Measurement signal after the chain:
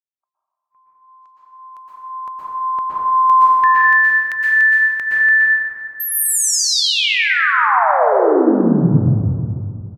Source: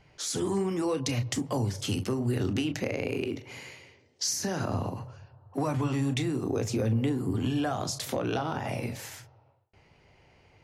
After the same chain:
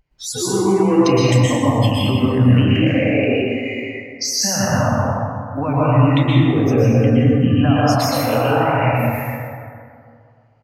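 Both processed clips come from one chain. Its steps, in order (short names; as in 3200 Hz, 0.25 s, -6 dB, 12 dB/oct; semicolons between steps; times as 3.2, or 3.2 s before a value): spectral noise reduction 28 dB; in parallel at +2 dB: compressor, threshold -37 dBFS; on the sum: feedback echo 0.128 s, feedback 39%, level -14.5 dB; plate-style reverb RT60 2.3 s, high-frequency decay 0.4×, pre-delay 0.105 s, DRR -7.5 dB; gain +4 dB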